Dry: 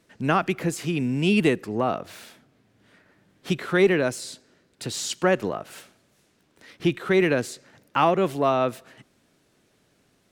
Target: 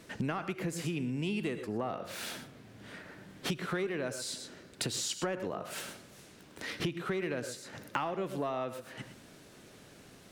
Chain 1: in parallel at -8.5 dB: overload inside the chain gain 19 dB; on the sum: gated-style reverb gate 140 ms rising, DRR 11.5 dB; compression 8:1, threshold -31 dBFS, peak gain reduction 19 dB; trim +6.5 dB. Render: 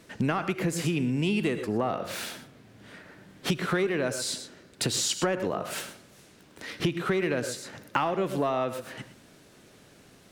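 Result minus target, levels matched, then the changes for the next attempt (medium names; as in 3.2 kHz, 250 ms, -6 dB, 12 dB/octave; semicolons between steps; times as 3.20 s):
compression: peak gain reduction -7.5 dB
change: compression 8:1, threshold -39.5 dBFS, peak gain reduction 26.5 dB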